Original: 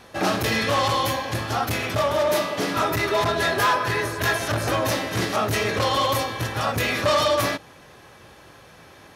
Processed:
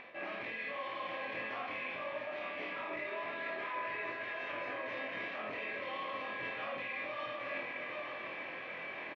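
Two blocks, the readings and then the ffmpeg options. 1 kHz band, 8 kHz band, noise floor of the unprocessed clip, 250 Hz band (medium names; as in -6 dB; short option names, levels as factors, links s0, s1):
-18.0 dB, under -40 dB, -48 dBFS, -21.0 dB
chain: -filter_complex "[0:a]highpass=410,equalizer=f=420:t=q:w=4:g=-7,equalizer=f=830:t=q:w=4:g=-9,equalizer=f=1400:t=q:w=4:g=-10,equalizer=f=2300:t=q:w=4:g=8,lowpass=f=2600:w=0.5412,lowpass=f=2600:w=1.3066,alimiter=limit=0.0708:level=0:latency=1,areverse,acompressor=threshold=0.00501:ratio=12,areverse,asplit=2[s0][s1];[s1]adelay=23,volume=0.708[s2];[s0][s2]amix=inputs=2:normalize=0,asplit=2[s3][s4];[s4]aecho=0:1:52|701|855:0.562|0.398|0.422[s5];[s3][s5]amix=inputs=2:normalize=0,acompressor=mode=upward:threshold=0.00224:ratio=2.5,volume=1.68"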